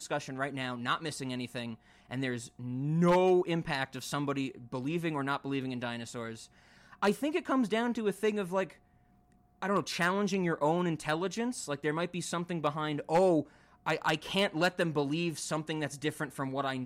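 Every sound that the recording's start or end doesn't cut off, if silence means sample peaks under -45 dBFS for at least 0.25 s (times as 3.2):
2.11–6.45
6.93–8.73
9.62–13.43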